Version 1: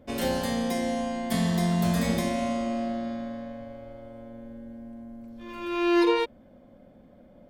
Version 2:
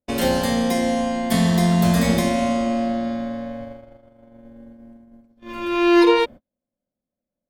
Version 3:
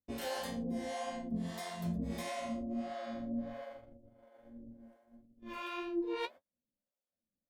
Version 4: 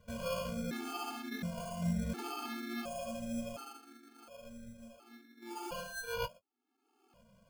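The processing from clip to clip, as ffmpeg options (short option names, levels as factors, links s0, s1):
-af "agate=range=0.00891:threshold=0.01:ratio=16:detection=peak,volume=2.37"
-filter_complex "[0:a]areverse,acompressor=threshold=0.0501:ratio=6,areverse,flanger=delay=9.5:depth=6.3:regen=35:speed=1.7:shape=triangular,acrossover=split=480[s0][s1];[s0]aeval=exprs='val(0)*(1-1/2+1/2*cos(2*PI*1.5*n/s))':c=same[s2];[s1]aeval=exprs='val(0)*(1-1/2-1/2*cos(2*PI*1.5*n/s))':c=same[s3];[s2][s3]amix=inputs=2:normalize=0,volume=0.841"
-af "acompressor=mode=upward:threshold=0.00562:ratio=2.5,acrusher=samples=23:mix=1:aa=0.000001,afftfilt=real='re*gt(sin(2*PI*0.7*pts/sr)*(1-2*mod(floor(b*sr/1024/230),2)),0)':imag='im*gt(sin(2*PI*0.7*pts/sr)*(1-2*mod(floor(b*sr/1024/230),2)),0)':win_size=1024:overlap=0.75,volume=1.5"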